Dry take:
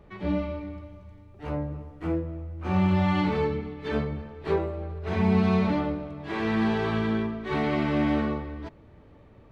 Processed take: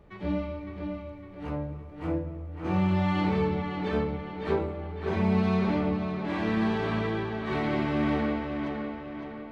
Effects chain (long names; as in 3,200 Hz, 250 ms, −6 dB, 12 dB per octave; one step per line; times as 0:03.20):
tape delay 557 ms, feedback 53%, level −4.5 dB, low-pass 4,500 Hz
level −2.5 dB